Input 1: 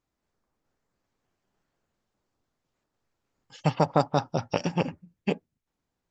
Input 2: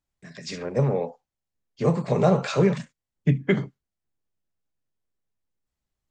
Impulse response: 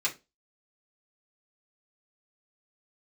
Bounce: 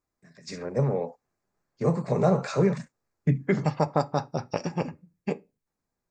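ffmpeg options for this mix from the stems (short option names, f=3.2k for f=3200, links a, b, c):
-filter_complex "[0:a]volume=-2.5dB,asplit=2[a][b];[b]volume=-15.5dB[c];[1:a]agate=range=-8dB:threshold=-37dB:ratio=16:detection=peak,volume=-2.5dB[d];[2:a]atrim=start_sample=2205[e];[c][e]afir=irnorm=-1:irlink=0[f];[a][d][f]amix=inputs=3:normalize=0,equalizer=f=3.1k:w=2.9:g=-13"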